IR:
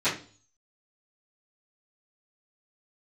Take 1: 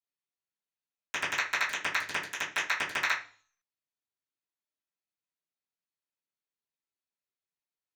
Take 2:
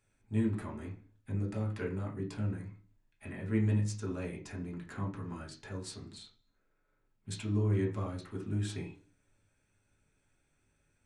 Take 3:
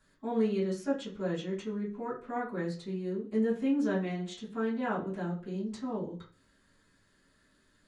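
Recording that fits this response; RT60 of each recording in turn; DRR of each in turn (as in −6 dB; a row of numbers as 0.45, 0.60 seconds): 1; 0.40, 0.40, 0.40 seconds; −17.0, −2.0, −11.0 decibels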